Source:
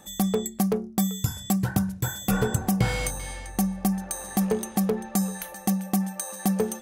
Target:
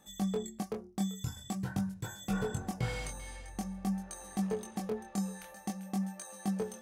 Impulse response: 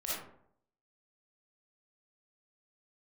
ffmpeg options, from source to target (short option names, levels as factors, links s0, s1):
-filter_complex "[0:a]acrossover=split=9100[s0][s1];[s1]acompressor=threshold=0.00398:ratio=4:attack=1:release=60[s2];[s0][s2]amix=inputs=2:normalize=0,flanger=delay=19.5:depth=5.6:speed=0.47,volume=0.422"